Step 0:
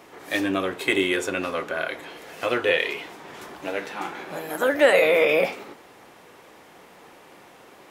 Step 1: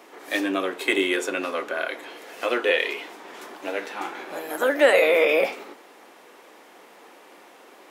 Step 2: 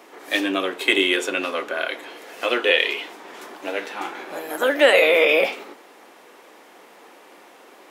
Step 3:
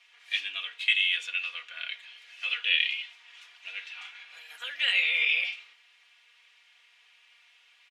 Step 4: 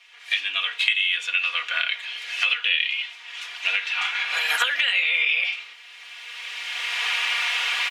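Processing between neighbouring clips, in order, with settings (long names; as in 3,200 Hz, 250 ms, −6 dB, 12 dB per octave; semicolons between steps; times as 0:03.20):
high-pass filter 240 Hz 24 dB per octave
dynamic equaliser 3,100 Hz, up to +7 dB, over −41 dBFS, Q 1.9; level +1.5 dB
four-pole ladder band-pass 3,200 Hz, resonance 45%; comb filter 4.2 ms; level +2 dB
camcorder AGC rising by 17 dB per second; dynamic equaliser 1,100 Hz, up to +5 dB, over −40 dBFS, Q 0.87; downward compressor 2 to 1, threshold −29 dBFS, peak gain reduction 7.5 dB; level +7 dB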